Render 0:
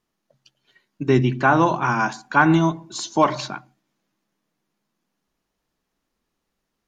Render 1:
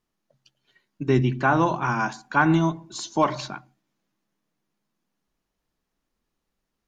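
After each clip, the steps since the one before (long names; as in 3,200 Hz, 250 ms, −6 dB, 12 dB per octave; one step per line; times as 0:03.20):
low-shelf EQ 100 Hz +6 dB
level −4 dB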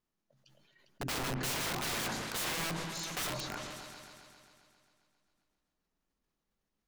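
wrap-around overflow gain 23.5 dB
echo whose low-pass opens from repeat to repeat 134 ms, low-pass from 400 Hz, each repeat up 2 octaves, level −6 dB
level that may fall only so fast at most 25 dB per second
level −7.5 dB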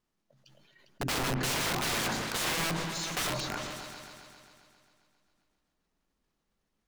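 running median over 3 samples
level +5 dB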